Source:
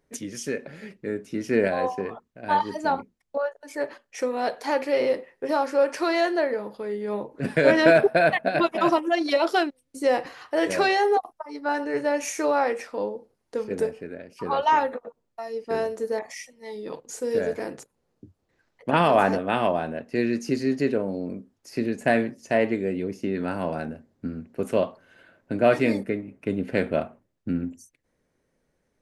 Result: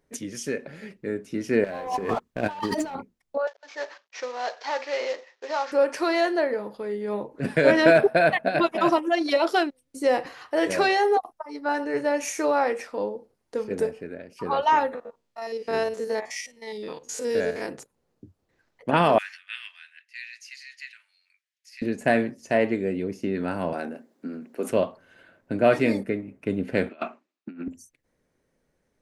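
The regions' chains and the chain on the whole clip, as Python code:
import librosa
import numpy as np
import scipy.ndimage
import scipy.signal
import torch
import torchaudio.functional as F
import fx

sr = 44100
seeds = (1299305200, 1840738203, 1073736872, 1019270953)

y = fx.chain(x, sr, fx.leveller(passes=2),
    fx.over_compress(threshold_db=-30.0, ratio=-1.0), at=(1.64, 2.95))
y = fx.chain(y, sr, fx.cvsd(bps=32000),
    fx.highpass(hz=690.0, slope=12), at=(3.47, 5.72))
y = fx.chain(y, sr, fx.spec_steps(hold_ms=50),
    fx.peak_eq(hz=3600.0, db=8.0, octaves=2.7), at=(14.95, 17.69))
y = fx.chain(y, sr, fx.steep_highpass(hz=1900.0, slope=36),
    fx.high_shelf(hz=6000.0, db=-11.5), at=(19.18, 21.82))
y = fx.chain(y, sr, fx.highpass(hz=230.0, slope=24),
    fx.high_shelf(hz=8500.0, db=4.0),
    fx.transient(attack_db=-1, sustain_db=5), at=(23.73, 24.7))
y = fx.chain(y, sr, fx.over_compress(threshold_db=-30.0, ratio=-0.5),
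    fx.cabinet(low_hz=250.0, low_slope=24, high_hz=7300.0, hz=(500.0, 1200.0, 2500.0, 4000.0), db=(-10, 6, 8, 4)),
    fx.band_widen(depth_pct=100), at=(26.89, 27.68))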